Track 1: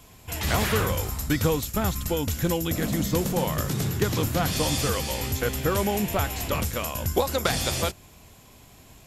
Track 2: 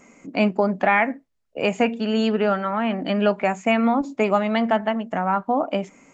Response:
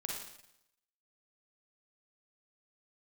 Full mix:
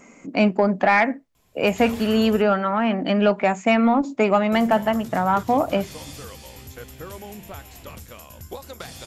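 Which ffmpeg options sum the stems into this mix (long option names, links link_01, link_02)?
-filter_complex "[0:a]bandreject=frequency=49.8:width_type=h:width=4,bandreject=frequency=99.6:width_type=h:width=4,bandreject=frequency=149.4:width_type=h:width=4,bandreject=frequency=199.2:width_type=h:width=4,bandreject=frequency=249:width_type=h:width=4,bandreject=frequency=298.8:width_type=h:width=4,adelay=1350,volume=-12.5dB,asplit=3[link_01][link_02][link_03];[link_01]atrim=end=2.42,asetpts=PTS-STARTPTS,afade=type=out:start_time=2.416:duration=0.004:curve=hsin[link_04];[link_02]atrim=start=2.42:end=4.52,asetpts=PTS-STARTPTS,volume=0[link_05];[link_03]atrim=start=4.52,asetpts=PTS-STARTPTS,afade=type=in:duration=0.004:curve=hsin[link_06];[link_04][link_05][link_06]concat=n=3:v=0:a=1[link_07];[1:a]acontrast=66,volume=-4dB[link_08];[link_07][link_08]amix=inputs=2:normalize=0"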